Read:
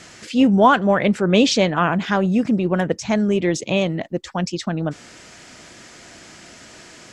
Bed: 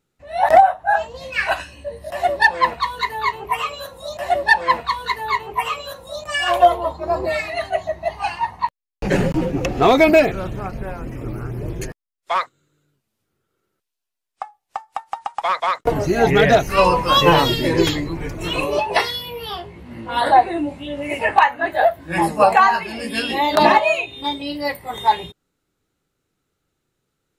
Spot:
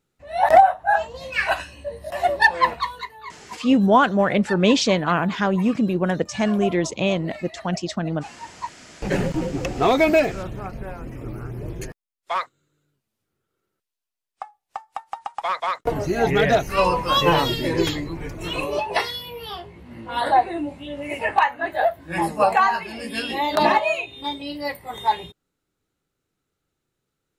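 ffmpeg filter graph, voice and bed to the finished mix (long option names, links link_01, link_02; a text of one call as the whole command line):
ffmpeg -i stem1.wav -i stem2.wav -filter_complex "[0:a]adelay=3300,volume=-2dB[link_01];[1:a]volume=11dB,afade=type=out:start_time=2.73:duration=0.39:silence=0.16788,afade=type=in:start_time=8.42:duration=0.55:silence=0.237137[link_02];[link_01][link_02]amix=inputs=2:normalize=0" out.wav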